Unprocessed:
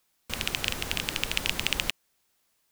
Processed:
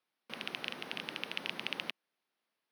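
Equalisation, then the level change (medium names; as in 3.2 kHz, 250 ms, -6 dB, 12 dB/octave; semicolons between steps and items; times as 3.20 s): boxcar filter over 6 samples; high-pass 180 Hz 24 dB/octave; -7.5 dB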